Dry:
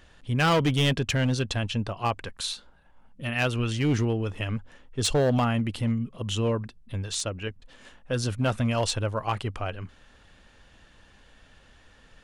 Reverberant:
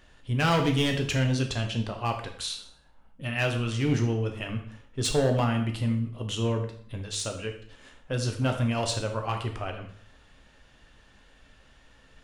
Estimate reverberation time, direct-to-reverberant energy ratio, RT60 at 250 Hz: 0.55 s, 3.0 dB, 0.60 s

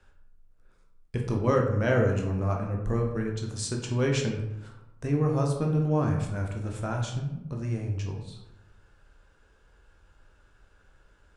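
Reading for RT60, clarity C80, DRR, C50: 0.90 s, 8.0 dB, 0.5 dB, 5.0 dB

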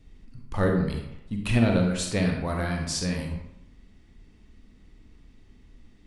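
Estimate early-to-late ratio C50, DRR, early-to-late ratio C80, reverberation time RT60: 3.5 dB, 1.5 dB, 6.0 dB, 0.85 s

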